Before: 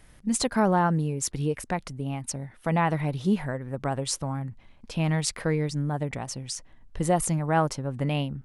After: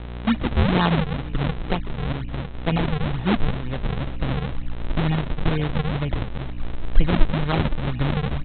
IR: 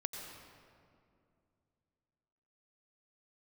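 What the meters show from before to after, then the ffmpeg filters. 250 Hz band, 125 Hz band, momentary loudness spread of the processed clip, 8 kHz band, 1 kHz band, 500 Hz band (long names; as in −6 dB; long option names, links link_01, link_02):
+3.5 dB, +4.5 dB, 8 LU, below −40 dB, −0.5 dB, 0.0 dB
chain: -filter_complex "[0:a]asubboost=boost=10.5:cutoff=53,acrossover=split=310|1000[link_01][link_02][link_03];[link_02]acompressor=threshold=-41dB:ratio=6[link_04];[link_01][link_04][link_03]amix=inputs=3:normalize=0,aeval=exprs='val(0)+0.0112*(sin(2*PI*60*n/s)+sin(2*PI*2*60*n/s)/2+sin(2*PI*3*60*n/s)/3+sin(2*PI*4*60*n/s)/4+sin(2*PI*5*60*n/s)/5)':channel_layout=same,asplit=2[link_05][link_06];[link_06]adelay=213,lowpass=frequency=1300:poles=1,volume=-18.5dB,asplit=2[link_07][link_08];[link_08]adelay=213,lowpass=frequency=1300:poles=1,volume=0.39,asplit=2[link_09][link_10];[link_10]adelay=213,lowpass=frequency=1300:poles=1,volume=0.39[link_11];[link_05][link_07][link_09][link_11]amix=inputs=4:normalize=0,aresample=8000,acrusher=samples=15:mix=1:aa=0.000001:lfo=1:lforange=24:lforate=2.1,aresample=44100,volume=7.5dB"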